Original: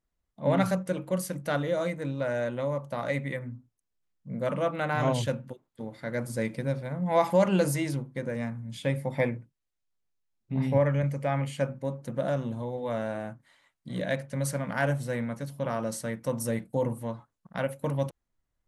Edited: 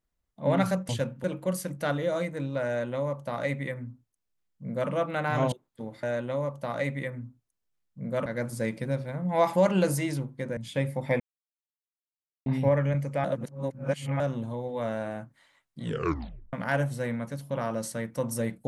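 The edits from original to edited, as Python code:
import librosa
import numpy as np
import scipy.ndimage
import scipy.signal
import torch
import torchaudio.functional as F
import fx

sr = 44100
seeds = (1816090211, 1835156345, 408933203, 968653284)

y = fx.edit(x, sr, fx.duplicate(start_s=2.32, length_s=2.23, to_s=6.03),
    fx.move(start_s=5.17, length_s=0.35, to_s=0.89),
    fx.cut(start_s=8.34, length_s=0.32),
    fx.silence(start_s=9.29, length_s=1.26),
    fx.reverse_span(start_s=11.33, length_s=0.96),
    fx.tape_stop(start_s=13.91, length_s=0.71), tone=tone)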